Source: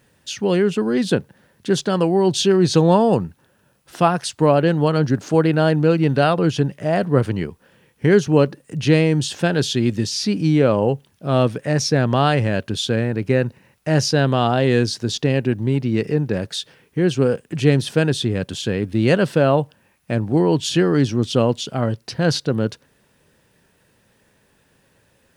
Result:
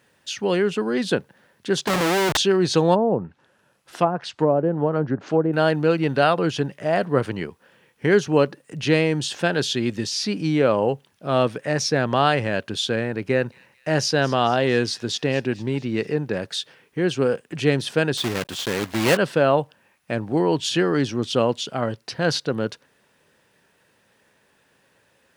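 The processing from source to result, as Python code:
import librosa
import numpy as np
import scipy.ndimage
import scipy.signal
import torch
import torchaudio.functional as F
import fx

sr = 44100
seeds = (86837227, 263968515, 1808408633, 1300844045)

y = fx.schmitt(x, sr, flips_db=-24.0, at=(1.87, 2.37))
y = fx.env_lowpass_down(y, sr, base_hz=640.0, full_db=-11.5, at=(2.94, 5.52), fade=0.02)
y = fx.echo_wet_highpass(y, sr, ms=224, feedback_pct=55, hz=3300.0, wet_db=-16.5, at=(13.11, 16.18))
y = fx.block_float(y, sr, bits=3, at=(18.17, 19.17))
y = fx.highpass(y, sr, hz=1300.0, slope=6)
y = fx.tilt_eq(y, sr, slope=-2.5)
y = F.gain(torch.from_numpy(y), 4.5).numpy()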